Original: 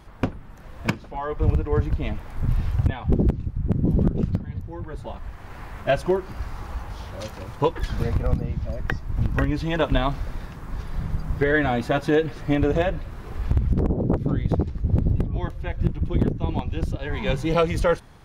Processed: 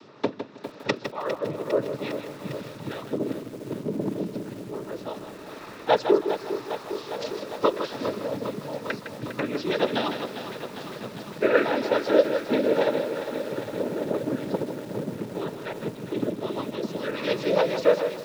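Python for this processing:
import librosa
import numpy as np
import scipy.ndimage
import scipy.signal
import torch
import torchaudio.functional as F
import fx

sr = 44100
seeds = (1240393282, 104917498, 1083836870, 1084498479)

p1 = fx.peak_eq(x, sr, hz=1300.0, db=-10.5, octaves=1.1)
p2 = fx.rider(p1, sr, range_db=4, speed_s=0.5)
p3 = p1 + (p2 * 10.0 ** (2.5 / 20.0))
p4 = fx.add_hum(p3, sr, base_hz=60, snr_db=18)
p5 = fx.noise_vocoder(p4, sr, seeds[0], bands=12)
p6 = fx.cabinet(p5, sr, low_hz=430.0, low_slope=12, high_hz=5100.0, hz=(760.0, 2100.0, 3000.0), db=(-9, -5, -6))
p7 = fx.echo_feedback(p6, sr, ms=158, feedback_pct=21, wet_db=-9.0)
p8 = fx.echo_crushed(p7, sr, ms=404, feedback_pct=80, bits=7, wet_db=-10.0)
y = p8 * 10.0 ** (-1.0 / 20.0)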